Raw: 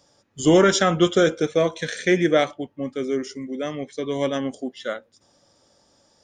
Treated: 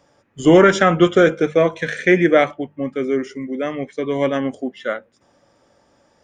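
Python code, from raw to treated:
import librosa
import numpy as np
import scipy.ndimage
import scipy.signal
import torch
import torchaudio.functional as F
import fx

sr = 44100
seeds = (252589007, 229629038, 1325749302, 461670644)

y = fx.high_shelf_res(x, sr, hz=3100.0, db=-8.5, q=1.5)
y = fx.hum_notches(y, sr, base_hz=50, count=4)
y = F.gain(torch.from_numpy(y), 4.5).numpy()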